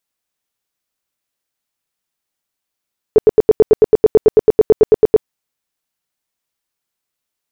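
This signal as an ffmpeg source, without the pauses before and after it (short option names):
-f lavfi -i "aevalsrc='0.75*sin(2*PI*433*mod(t,0.11))*lt(mod(t,0.11),10/433)':d=2.09:s=44100"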